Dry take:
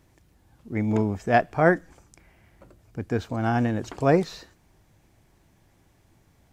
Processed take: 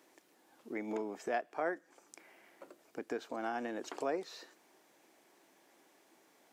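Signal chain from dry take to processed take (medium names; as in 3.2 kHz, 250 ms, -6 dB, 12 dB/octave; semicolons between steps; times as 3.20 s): high-pass 300 Hz 24 dB/octave; compression 2.5:1, threshold -40 dBFS, peak gain reduction 17 dB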